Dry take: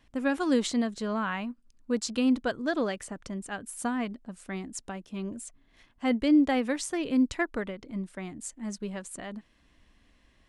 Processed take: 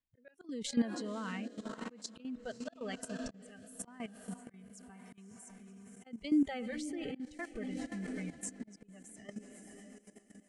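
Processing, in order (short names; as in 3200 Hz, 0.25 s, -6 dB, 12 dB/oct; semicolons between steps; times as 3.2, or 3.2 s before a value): spectral noise reduction 23 dB; diffused feedback echo 0.539 s, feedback 56%, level -12 dB; auto swell 0.471 s; rotary speaker horn 0.9 Hz, later 8 Hz, at 6.94; level quantiser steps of 14 dB; gain +2.5 dB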